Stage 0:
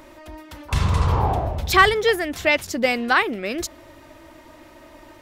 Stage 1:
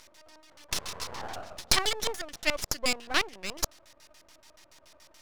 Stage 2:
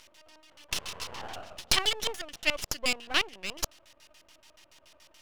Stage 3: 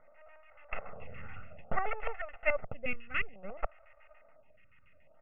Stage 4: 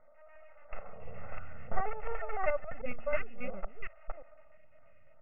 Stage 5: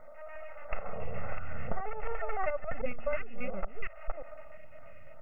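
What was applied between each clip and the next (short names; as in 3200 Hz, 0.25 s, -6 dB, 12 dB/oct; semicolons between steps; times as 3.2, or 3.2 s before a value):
differentiator; LFO low-pass square 7 Hz 600–5600 Hz; half-wave rectifier; gain +7 dB
bell 2900 Hz +8 dB 0.45 oct; gain -2.5 dB
steep low-pass 2500 Hz 72 dB/oct; comb 1.5 ms, depth 87%; photocell phaser 0.58 Hz
reverse delay 0.352 s, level -1 dB; LPF 2000 Hz 12 dB/oct; harmonic-percussive split percussive -9 dB; gain +1 dB
compressor 12:1, threshold -36 dBFS, peak gain reduction 17.5 dB; gain +11.5 dB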